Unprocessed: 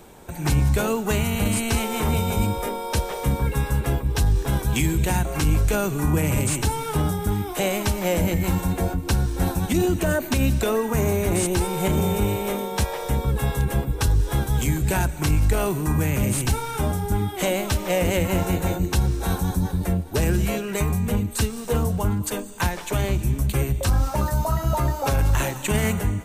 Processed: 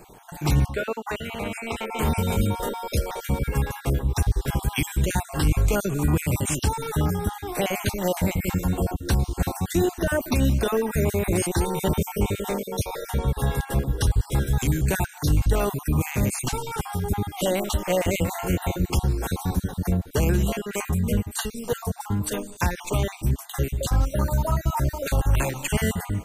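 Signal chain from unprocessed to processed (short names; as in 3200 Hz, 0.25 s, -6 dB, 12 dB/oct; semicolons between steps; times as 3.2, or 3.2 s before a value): random spectral dropouts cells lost 35%; 0.66–1.99 tone controls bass -14 dB, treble -14 dB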